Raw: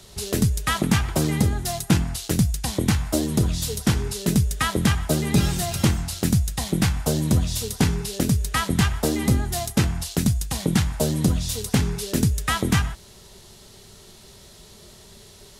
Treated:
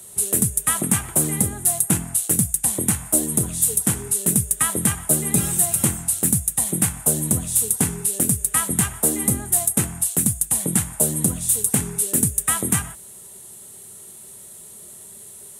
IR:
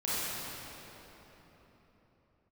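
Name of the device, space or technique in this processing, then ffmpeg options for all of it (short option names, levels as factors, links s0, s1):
budget condenser microphone: -af "highpass=110,highshelf=f=6800:t=q:w=3:g=12,volume=0.75"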